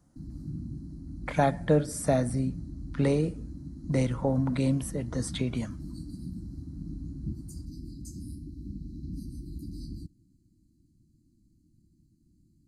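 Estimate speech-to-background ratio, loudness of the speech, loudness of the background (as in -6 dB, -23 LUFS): 12.5 dB, -28.5 LUFS, -41.0 LUFS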